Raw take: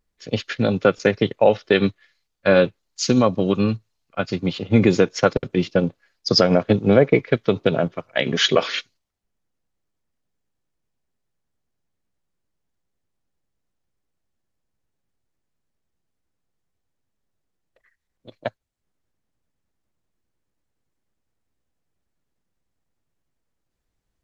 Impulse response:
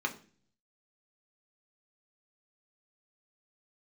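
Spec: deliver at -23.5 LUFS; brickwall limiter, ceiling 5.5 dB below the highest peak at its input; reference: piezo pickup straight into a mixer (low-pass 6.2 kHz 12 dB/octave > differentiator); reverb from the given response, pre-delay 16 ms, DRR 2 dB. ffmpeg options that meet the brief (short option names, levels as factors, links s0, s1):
-filter_complex "[0:a]alimiter=limit=0.447:level=0:latency=1,asplit=2[s0][s1];[1:a]atrim=start_sample=2205,adelay=16[s2];[s1][s2]afir=irnorm=-1:irlink=0,volume=0.398[s3];[s0][s3]amix=inputs=2:normalize=0,lowpass=6200,aderivative,volume=3.55"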